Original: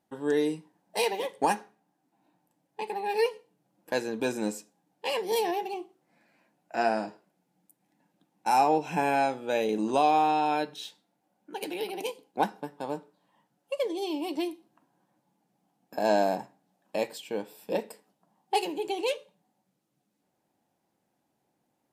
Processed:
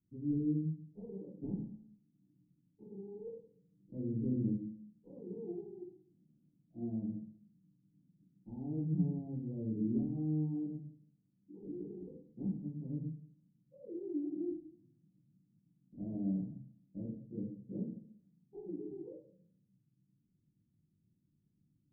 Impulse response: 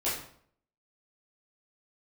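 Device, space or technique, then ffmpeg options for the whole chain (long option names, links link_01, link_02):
club heard from the street: -filter_complex "[0:a]alimiter=limit=-17.5dB:level=0:latency=1:release=17,lowpass=frequency=180:width=0.5412,lowpass=frequency=180:width=1.3066[link_01];[1:a]atrim=start_sample=2205[link_02];[link_01][link_02]afir=irnorm=-1:irlink=0,volume=3.5dB"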